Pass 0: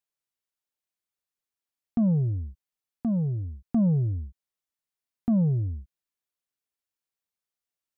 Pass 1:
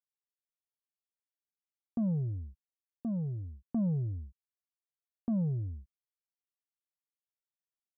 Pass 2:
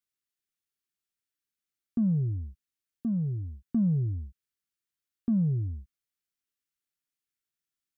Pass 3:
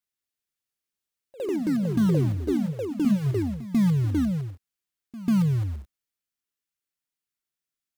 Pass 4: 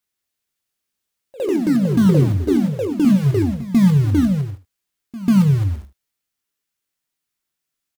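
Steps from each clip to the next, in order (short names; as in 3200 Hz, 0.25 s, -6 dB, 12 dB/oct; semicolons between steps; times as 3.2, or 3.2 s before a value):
expander -39 dBFS; gain -8 dB
band shelf 700 Hz -12.5 dB 1.3 oct; gain +5 dB
in parallel at -5 dB: companded quantiser 4-bit; on the sum: pre-echo 0.143 s -17 dB; echoes that change speed 0.19 s, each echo +5 st, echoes 3
early reflections 21 ms -10 dB, 77 ms -15 dB; gain +7.5 dB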